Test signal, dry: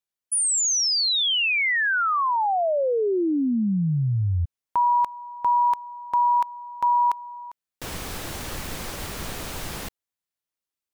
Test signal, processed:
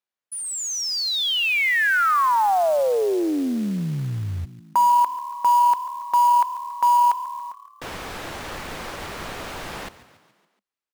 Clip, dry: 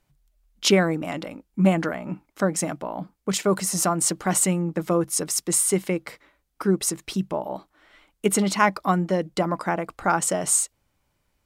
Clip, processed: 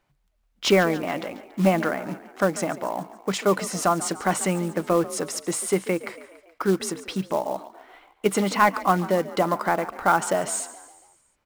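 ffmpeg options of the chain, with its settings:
-filter_complex "[0:a]asplit=2[s0][s1];[s1]highpass=f=720:p=1,volume=3.55,asoftclip=type=tanh:threshold=0.668[s2];[s0][s2]amix=inputs=2:normalize=0,lowpass=f=1600:p=1,volume=0.501,asplit=6[s3][s4][s5][s6][s7][s8];[s4]adelay=141,afreqshift=37,volume=0.15[s9];[s5]adelay=282,afreqshift=74,volume=0.0822[s10];[s6]adelay=423,afreqshift=111,volume=0.0452[s11];[s7]adelay=564,afreqshift=148,volume=0.0248[s12];[s8]adelay=705,afreqshift=185,volume=0.0136[s13];[s3][s9][s10][s11][s12][s13]amix=inputs=6:normalize=0,acrusher=bits=5:mode=log:mix=0:aa=0.000001"

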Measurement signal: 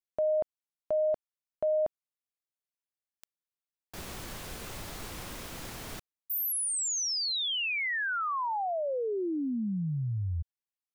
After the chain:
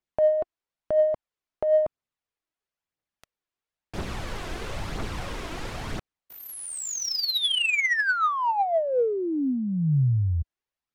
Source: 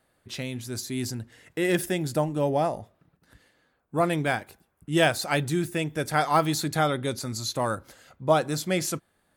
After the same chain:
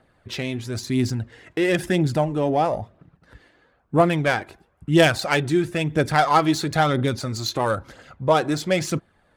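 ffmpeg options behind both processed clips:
-filter_complex "[0:a]asplit=2[s0][s1];[s1]acompressor=threshold=0.0224:ratio=6:attack=12:release=41,volume=1.26[s2];[s0][s2]amix=inputs=2:normalize=0,aphaser=in_gain=1:out_gain=1:delay=3.2:decay=0.41:speed=1:type=triangular,adynamicsmooth=sensitivity=0.5:basefreq=2300,aemphasis=mode=production:type=75kf,volume=1.12"

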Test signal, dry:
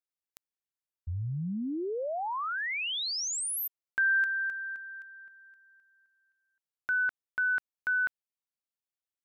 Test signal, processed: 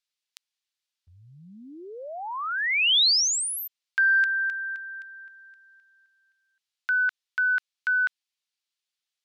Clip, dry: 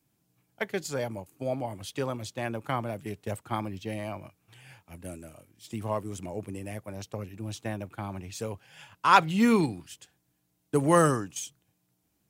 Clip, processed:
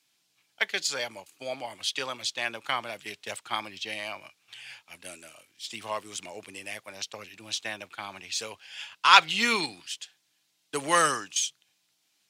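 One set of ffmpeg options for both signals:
-af "acontrast=35,bandpass=f=3800:t=q:w=1.2:csg=0,volume=2.66"

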